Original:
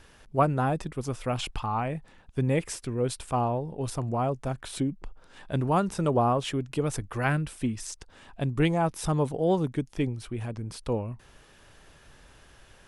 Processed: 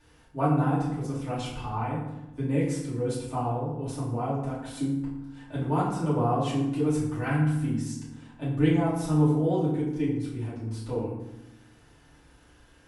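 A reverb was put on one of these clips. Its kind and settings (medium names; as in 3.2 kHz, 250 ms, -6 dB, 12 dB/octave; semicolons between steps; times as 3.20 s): FDN reverb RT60 0.93 s, low-frequency decay 1.6×, high-frequency decay 0.6×, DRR -10 dB; trim -13.5 dB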